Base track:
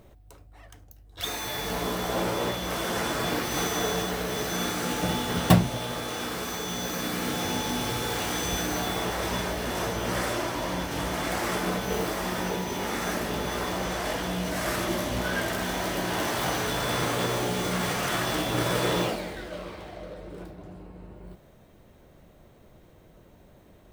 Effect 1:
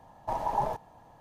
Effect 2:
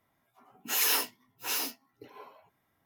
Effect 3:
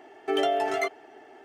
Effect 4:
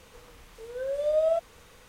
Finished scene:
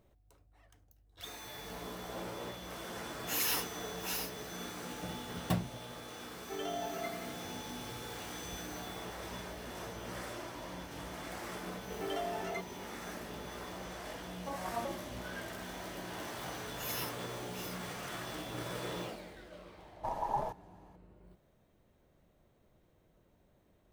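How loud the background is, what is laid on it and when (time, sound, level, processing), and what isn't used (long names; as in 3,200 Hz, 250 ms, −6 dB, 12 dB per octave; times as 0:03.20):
base track −14.5 dB
0:02.59: mix in 2 −6.5 dB
0:06.22: mix in 3 −16 dB + feedback echo with a low-pass in the loop 85 ms, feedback 71%, low-pass 4,200 Hz, level −6 dB
0:11.73: mix in 3 −13 dB
0:14.18: mix in 1 −9.5 dB + vocoder with an arpeggio as carrier major triad, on F#3, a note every 132 ms
0:16.08: mix in 2 −14 dB + every bin expanded away from the loudest bin 1.5 to 1
0:19.76: mix in 1 −5.5 dB
not used: 4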